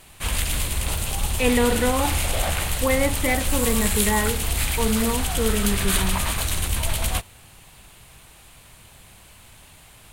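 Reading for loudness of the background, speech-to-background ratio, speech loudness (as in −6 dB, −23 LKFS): −24.0 LKFS, −1.0 dB, −25.0 LKFS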